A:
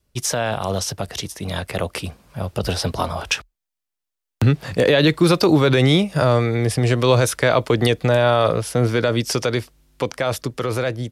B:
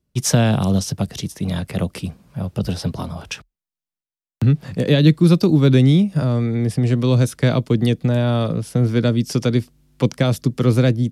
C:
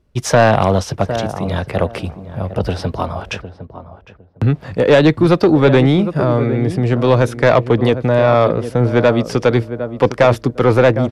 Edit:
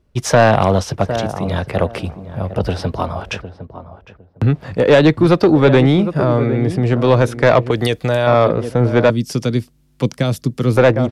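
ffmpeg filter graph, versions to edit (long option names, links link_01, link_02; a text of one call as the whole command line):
ffmpeg -i take0.wav -i take1.wav -i take2.wav -filter_complex "[2:a]asplit=3[link_01][link_02][link_03];[link_01]atrim=end=7.712[link_04];[0:a]atrim=start=7.708:end=8.272[link_05];[link_02]atrim=start=8.268:end=9.102[link_06];[1:a]atrim=start=9.098:end=10.772[link_07];[link_03]atrim=start=10.768[link_08];[link_04][link_05]acrossfade=duration=0.004:curve1=hsin:curve2=hsin[link_09];[link_09][link_06]acrossfade=duration=0.004:curve1=hsin:curve2=hsin[link_10];[link_10][link_07]acrossfade=duration=0.004:curve1=hsin:curve2=hsin[link_11];[link_11][link_08]acrossfade=duration=0.004:curve1=hsin:curve2=hsin" out.wav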